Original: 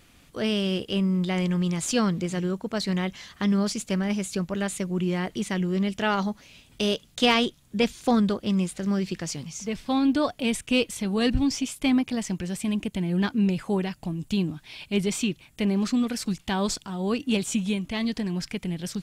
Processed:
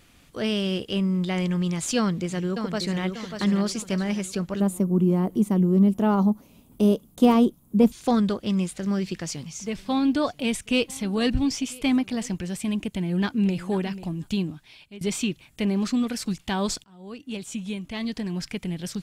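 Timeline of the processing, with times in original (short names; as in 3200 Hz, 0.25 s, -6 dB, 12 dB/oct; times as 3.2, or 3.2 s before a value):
1.97–3.02 echo throw 0.59 s, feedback 45%, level -7 dB
4.6–7.92 EQ curve 130 Hz 0 dB, 210 Hz +9 dB, 620 Hz +1 dB, 1100 Hz +1 dB, 1700 Hz -14 dB, 4900 Hz -13 dB, 7800 Hz -6 dB, 13000 Hz +8 dB
8.64–12.37 echo 0.991 s -24 dB
12.92–13.59 echo throw 0.49 s, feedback 15%, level -14.5 dB
14.32–15.01 fade out, to -23 dB
16.84–18.49 fade in, from -23 dB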